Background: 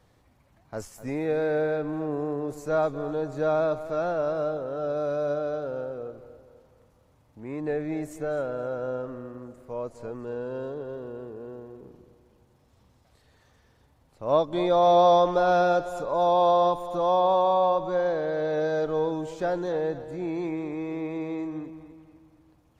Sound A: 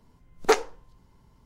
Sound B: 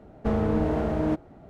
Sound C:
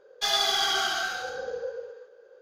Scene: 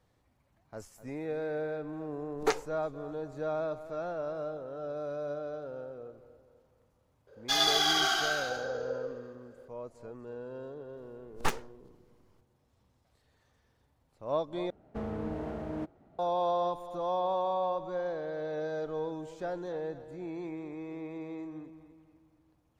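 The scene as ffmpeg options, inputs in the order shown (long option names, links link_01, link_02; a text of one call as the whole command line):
ffmpeg -i bed.wav -i cue0.wav -i cue1.wav -i cue2.wav -filter_complex "[1:a]asplit=2[link_01][link_02];[0:a]volume=-9dB[link_03];[link_02]aeval=exprs='abs(val(0))':channel_layout=same[link_04];[2:a]lowshelf=frequency=71:gain=-7[link_05];[link_03]asplit=2[link_06][link_07];[link_06]atrim=end=14.704[link_08];[link_05]atrim=end=1.49,asetpts=PTS-STARTPTS,volume=-11dB[link_09];[link_07]atrim=start=16.186[link_10];[link_01]atrim=end=1.45,asetpts=PTS-STARTPTS,volume=-8.5dB,afade=type=in:duration=0.004:curve=hsin,afade=type=out:start_time=1.446:duration=0.004:curve=hsin,adelay=1980[link_11];[3:a]atrim=end=2.41,asetpts=PTS-STARTPTS,volume=-1.5dB,afade=type=in:duration=0.004:curve=hsin,afade=type=out:start_time=2.406:duration=0.004:curve=hsin,adelay=7270[link_12];[link_04]atrim=end=1.45,asetpts=PTS-STARTPTS,volume=-7dB,afade=type=in:duration=0.004:curve=hsin,afade=type=out:start_time=1.446:duration=0.004:curve=hsin,adelay=10960[link_13];[link_08][link_09]acrossfade=duration=0.004:curve1=hsin:curve2=hsin[link_14];[link_14][link_10]acrossfade=duration=0.004:curve1=hsin:curve2=hsin[link_15];[link_15][link_11][link_12][link_13]amix=inputs=4:normalize=0" out.wav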